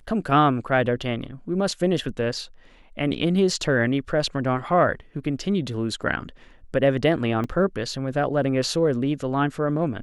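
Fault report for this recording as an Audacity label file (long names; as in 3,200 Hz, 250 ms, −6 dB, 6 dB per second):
7.440000	7.440000	drop-out 3.1 ms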